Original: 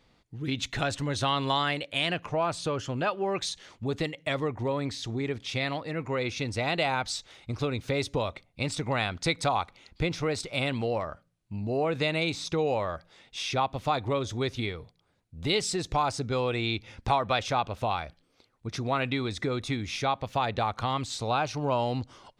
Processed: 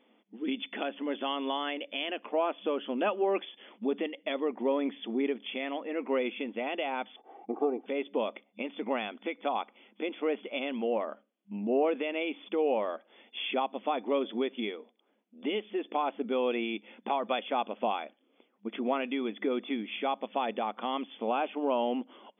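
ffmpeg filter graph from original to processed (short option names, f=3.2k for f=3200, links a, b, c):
-filter_complex "[0:a]asettb=1/sr,asplit=3[a][b][c];[a]atrim=end=7.164[d];[b]atrim=start=7.16:end=7.86,asetpts=PTS-STARTPTS,afade=t=in:d=0.004:c=qsin,afade=t=out:st=0.696:d=0.004:c=qsin,lowpass=f=810:t=q:w=3.6,aecho=1:1:2.6:0.7,atrim=end_sample=30870[e];[c]atrim=start=7.856[f];[d][e]acrossfade=d=0.004:c1=hsin:c2=qsin[g];[g][f]acrossfade=d=0.004:c1=qsin:c2=hsin,equalizer=f=1.5k:t=o:w=1.5:g=-8,alimiter=limit=-22dB:level=0:latency=1:release=454,afftfilt=real='re*between(b*sr/4096,200,3500)':imag='im*between(b*sr/4096,200,3500)':win_size=4096:overlap=0.75,volume=3.5dB"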